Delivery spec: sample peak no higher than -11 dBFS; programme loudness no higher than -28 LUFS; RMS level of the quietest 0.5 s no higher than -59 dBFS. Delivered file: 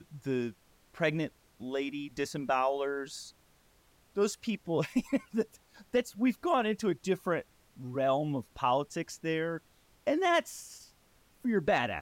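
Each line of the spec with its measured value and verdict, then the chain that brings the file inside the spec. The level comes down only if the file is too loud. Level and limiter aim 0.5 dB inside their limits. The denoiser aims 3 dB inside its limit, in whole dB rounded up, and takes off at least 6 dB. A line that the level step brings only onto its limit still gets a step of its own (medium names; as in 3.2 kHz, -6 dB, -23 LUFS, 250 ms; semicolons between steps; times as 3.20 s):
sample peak -17.5 dBFS: pass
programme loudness -32.5 LUFS: pass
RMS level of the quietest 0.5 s -65 dBFS: pass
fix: none needed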